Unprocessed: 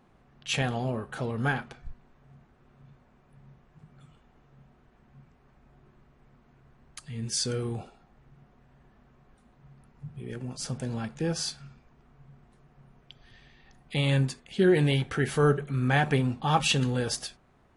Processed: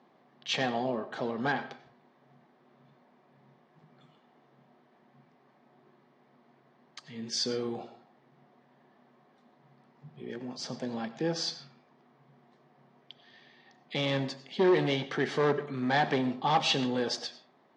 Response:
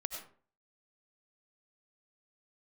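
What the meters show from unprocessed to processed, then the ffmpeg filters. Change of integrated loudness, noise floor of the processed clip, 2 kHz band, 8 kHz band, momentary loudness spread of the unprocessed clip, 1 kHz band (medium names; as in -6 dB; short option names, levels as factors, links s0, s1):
-2.5 dB, -65 dBFS, -2.5 dB, -7.0 dB, 17 LU, +0.5 dB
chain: -filter_complex "[0:a]volume=10.6,asoftclip=hard,volume=0.0944,highpass=f=200:w=0.5412,highpass=f=200:w=1.3066,equalizer=f=200:t=q:w=4:g=-5,equalizer=f=300:t=q:w=4:g=-3,equalizer=f=460:t=q:w=4:g=-3,equalizer=f=1400:t=q:w=4:g=-8,equalizer=f=2600:t=q:w=4:g=-7,lowpass=f=5400:w=0.5412,lowpass=f=5400:w=1.3066,asplit=2[s0][s1];[1:a]atrim=start_sample=2205,lowpass=7300[s2];[s1][s2]afir=irnorm=-1:irlink=0,volume=0.473[s3];[s0][s3]amix=inputs=2:normalize=0"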